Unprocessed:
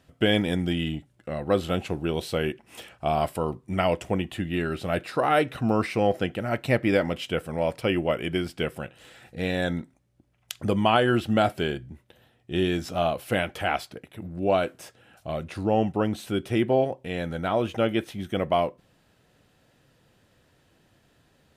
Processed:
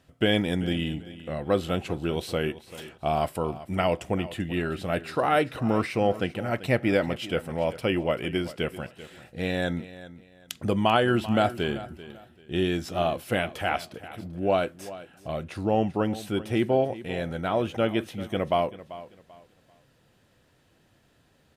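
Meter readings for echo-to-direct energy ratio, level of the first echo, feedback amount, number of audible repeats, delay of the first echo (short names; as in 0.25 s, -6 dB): -15.5 dB, -16.0 dB, 27%, 2, 0.389 s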